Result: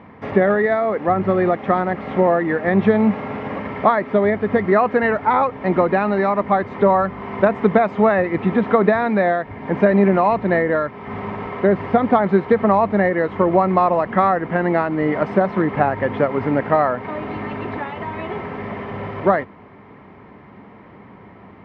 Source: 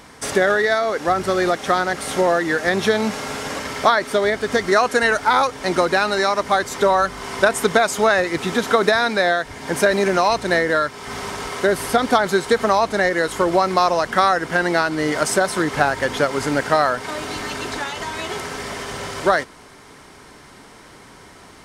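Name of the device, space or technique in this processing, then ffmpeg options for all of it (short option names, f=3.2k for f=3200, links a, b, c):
bass cabinet: -af "highpass=69,equalizer=f=100:t=q:w=4:g=7,equalizer=f=200:t=q:w=4:g=9,equalizer=f=1.5k:t=q:w=4:g=-10,lowpass=f=2.1k:w=0.5412,lowpass=f=2.1k:w=1.3066,volume=1.5dB"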